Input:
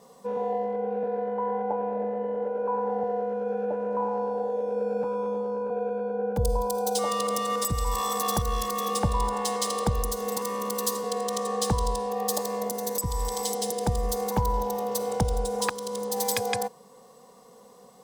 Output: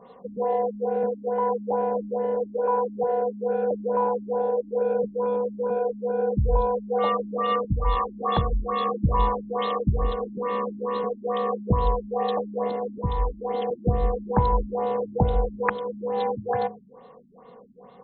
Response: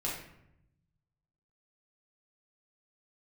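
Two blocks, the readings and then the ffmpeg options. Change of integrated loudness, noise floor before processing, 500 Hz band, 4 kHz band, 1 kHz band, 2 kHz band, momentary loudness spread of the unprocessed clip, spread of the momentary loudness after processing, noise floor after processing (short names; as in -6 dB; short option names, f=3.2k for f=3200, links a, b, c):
+2.5 dB, -53 dBFS, +3.0 dB, -6.5 dB, +3.0 dB, +1.0 dB, 3 LU, 5 LU, -49 dBFS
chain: -af "bandreject=f=52.34:t=h:w=4,bandreject=f=104.68:t=h:w=4,bandreject=f=157.02:t=h:w=4,bandreject=f=209.36:t=h:w=4,bandreject=f=261.7:t=h:w=4,bandreject=f=314.04:t=h:w=4,bandreject=f=366.38:t=h:w=4,bandreject=f=418.72:t=h:w=4,bandreject=f=471.06:t=h:w=4,bandreject=f=523.4:t=h:w=4,bandreject=f=575.74:t=h:w=4,bandreject=f=628.08:t=h:w=4,bandreject=f=680.42:t=h:w=4,bandreject=f=732.76:t=h:w=4,afftfilt=real='re*lt(b*sr/1024,310*pow(4300/310,0.5+0.5*sin(2*PI*2.3*pts/sr)))':imag='im*lt(b*sr/1024,310*pow(4300/310,0.5+0.5*sin(2*PI*2.3*pts/sr)))':win_size=1024:overlap=0.75,volume=5dB"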